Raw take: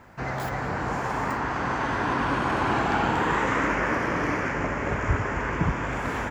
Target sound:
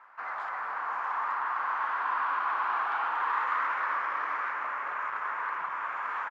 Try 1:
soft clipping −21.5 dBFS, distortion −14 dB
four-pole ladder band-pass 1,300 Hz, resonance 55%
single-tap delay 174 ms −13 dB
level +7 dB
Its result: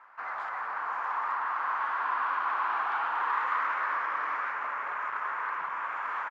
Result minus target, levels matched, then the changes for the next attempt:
echo 93 ms early
change: single-tap delay 267 ms −13 dB

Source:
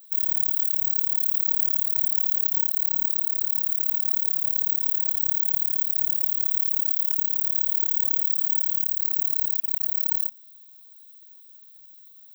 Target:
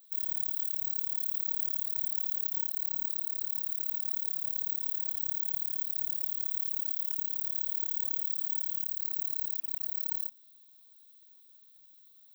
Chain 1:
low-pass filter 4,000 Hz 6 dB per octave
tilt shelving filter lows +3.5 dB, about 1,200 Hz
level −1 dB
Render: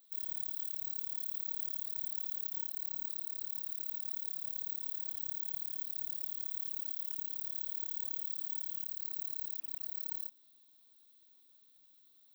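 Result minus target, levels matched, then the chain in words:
4,000 Hz band +4.0 dB
low-pass filter 9,200 Hz 6 dB per octave
tilt shelving filter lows +3.5 dB, about 1,200 Hz
level −1 dB

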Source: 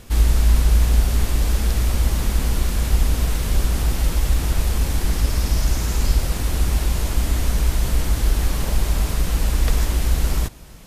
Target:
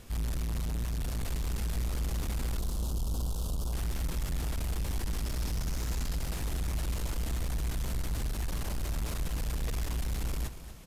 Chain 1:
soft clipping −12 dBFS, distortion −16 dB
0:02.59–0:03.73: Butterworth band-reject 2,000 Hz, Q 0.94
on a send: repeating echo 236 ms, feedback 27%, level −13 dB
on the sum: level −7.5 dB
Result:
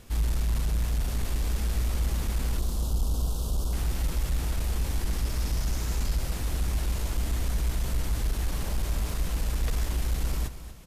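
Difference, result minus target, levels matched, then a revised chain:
soft clipping: distortion −8 dB
soft clipping −21.5 dBFS, distortion −8 dB
0:02.59–0:03.73: Butterworth band-reject 2,000 Hz, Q 0.94
on a send: repeating echo 236 ms, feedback 27%, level −13 dB
on the sum: level −7.5 dB

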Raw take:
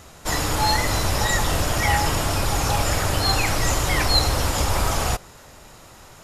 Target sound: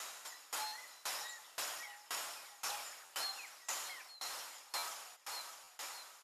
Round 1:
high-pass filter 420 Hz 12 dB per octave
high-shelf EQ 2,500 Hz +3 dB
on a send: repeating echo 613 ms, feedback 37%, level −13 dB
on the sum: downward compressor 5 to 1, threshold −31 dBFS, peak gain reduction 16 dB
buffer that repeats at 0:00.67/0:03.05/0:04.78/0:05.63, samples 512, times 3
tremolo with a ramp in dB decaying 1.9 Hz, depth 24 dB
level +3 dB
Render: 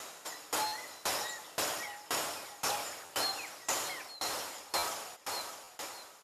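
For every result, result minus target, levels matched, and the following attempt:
downward compressor: peak gain reduction −7.5 dB; 500 Hz band +7.0 dB
high-pass filter 420 Hz 12 dB per octave
high-shelf EQ 2,500 Hz +3 dB
on a send: repeating echo 613 ms, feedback 37%, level −13 dB
on the sum: downward compressor 5 to 1, threshold −40.5 dBFS, peak gain reduction 23.5 dB
buffer that repeats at 0:00.67/0:03.05/0:04.78/0:05.63, samples 512, times 3
tremolo with a ramp in dB decaying 1.9 Hz, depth 24 dB
level +3 dB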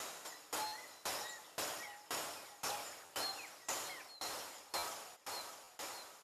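500 Hz band +7.0 dB
high-pass filter 940 Hz 12 dB per octave
high-shelf EQ 2,500 Hz +3 dB
on a send: repeating echo 613 ms, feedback 37%, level −13 dB
on the sum: downward compressor 5 to 1, threshold −40.5 dBFS, peak gain reduction 23 dB
buffer that repeats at 0:00.67/0:03.05/0:04.78/0:05.63, samples 512, times 3
tremolo with a ramp in dB decaying 1.9 Hz, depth 24 dB
level +3 dB

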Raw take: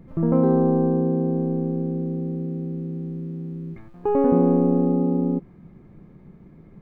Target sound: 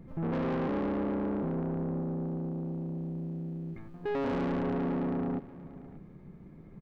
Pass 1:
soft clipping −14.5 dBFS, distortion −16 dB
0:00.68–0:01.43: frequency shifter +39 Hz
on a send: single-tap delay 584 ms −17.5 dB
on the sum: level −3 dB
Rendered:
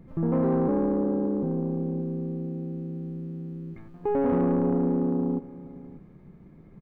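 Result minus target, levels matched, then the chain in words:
soft clipping: distortion −10 dB
soft clipping −26 dBFS, distortion −6 dB
0:00.68–0:01.43: frequency shifter +39 Hz
on a send: single-tap delay 584 ms −17.5 dB
on the sum: level −3 dB

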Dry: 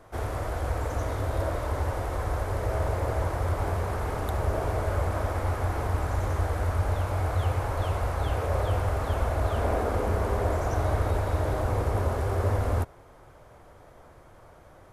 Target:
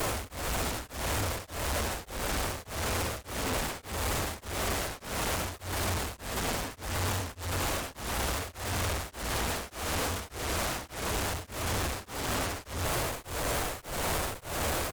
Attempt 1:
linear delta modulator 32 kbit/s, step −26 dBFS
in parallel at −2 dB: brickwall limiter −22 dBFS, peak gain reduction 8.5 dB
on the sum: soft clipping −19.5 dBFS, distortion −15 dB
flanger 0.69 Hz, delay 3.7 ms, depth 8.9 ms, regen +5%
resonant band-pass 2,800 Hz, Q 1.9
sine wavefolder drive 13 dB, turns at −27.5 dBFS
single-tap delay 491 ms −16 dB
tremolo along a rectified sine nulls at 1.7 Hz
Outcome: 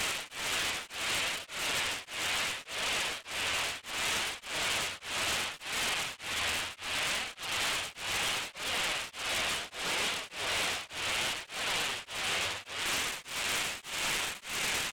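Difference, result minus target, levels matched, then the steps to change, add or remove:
soft clipping: distortion −7 dB; 2,000 Hz band +3.0 dB
change: soft clipping −27 dBFS, distortion −7 dB
remove: resonant band-pass 2,800 Hz, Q 1.9

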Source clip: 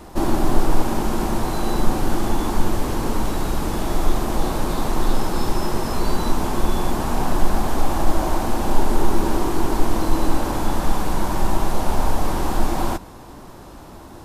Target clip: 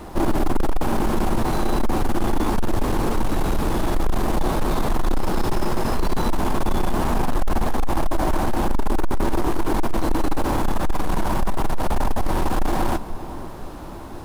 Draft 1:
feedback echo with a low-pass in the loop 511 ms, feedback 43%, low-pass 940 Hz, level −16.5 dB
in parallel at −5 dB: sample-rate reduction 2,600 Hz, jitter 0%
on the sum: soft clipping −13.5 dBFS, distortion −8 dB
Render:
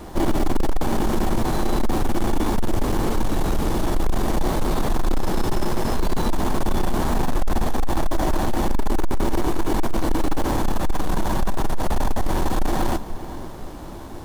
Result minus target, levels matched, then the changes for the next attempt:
sample-rate reduction: distortion +7 dB
change: sample-rate reduction 10,000 Hz, jitter 0%

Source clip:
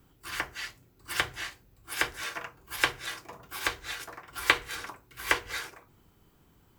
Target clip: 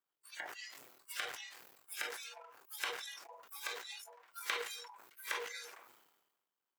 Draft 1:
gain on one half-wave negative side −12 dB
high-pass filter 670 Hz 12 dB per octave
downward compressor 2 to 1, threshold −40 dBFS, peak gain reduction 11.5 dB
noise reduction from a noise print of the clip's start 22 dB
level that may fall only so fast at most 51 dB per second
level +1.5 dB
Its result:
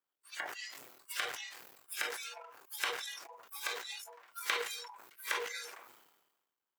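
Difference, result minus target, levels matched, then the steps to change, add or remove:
downward compressor: peak gain reduction −4 dB
change: downward compressor 2 to 1, threshold −47.5 dBFS, peak gain reduction 15 dB

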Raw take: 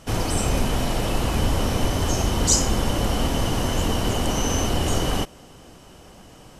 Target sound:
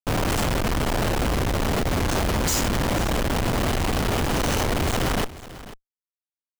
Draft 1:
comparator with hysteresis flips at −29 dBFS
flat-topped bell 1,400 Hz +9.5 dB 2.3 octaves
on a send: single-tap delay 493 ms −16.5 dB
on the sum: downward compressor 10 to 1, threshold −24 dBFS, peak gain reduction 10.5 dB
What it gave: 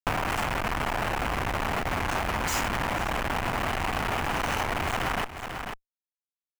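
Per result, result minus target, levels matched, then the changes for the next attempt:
downward compressor: peak gain reduction +10.5 dB; 1,000 Hz band +4.5 dB
remove: downward compressor 10 to 1, threshold −24 dBFS, peak gain reduction 10.5 dB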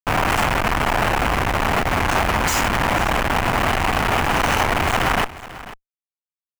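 1,000 Hz band +4.5 dB
remove: flat-topped bell 1,400 Hz +9.5 dB 2.3 octaves

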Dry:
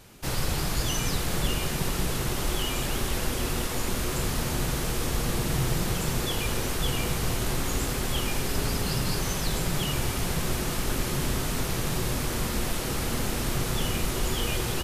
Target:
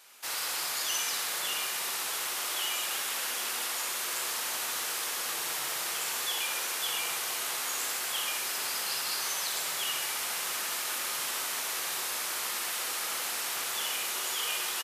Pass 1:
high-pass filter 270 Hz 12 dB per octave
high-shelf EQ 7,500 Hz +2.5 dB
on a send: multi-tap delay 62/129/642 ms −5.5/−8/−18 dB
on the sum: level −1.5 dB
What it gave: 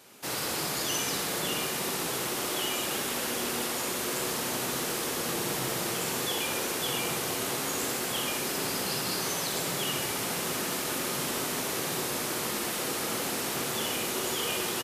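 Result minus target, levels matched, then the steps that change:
250 Hz band +17.5 dB
change: high-pass filter 980 Hz 12 dB per octave

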